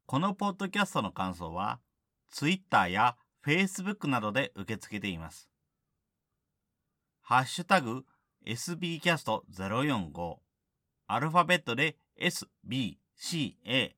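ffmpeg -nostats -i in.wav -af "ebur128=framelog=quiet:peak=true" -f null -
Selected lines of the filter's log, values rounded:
Integrated loudness:
  I:         -30.8 LUFS
  Threshold: -41.3 LUFS
Loudness range:
  LRA:         5.7 LU
  Threshold: -51.9 LUFS
  LRA low:   -36.0 LUFS
  LRA high:  -30.4 LUFS
True peak:
  Peak:      -10.5 dBFS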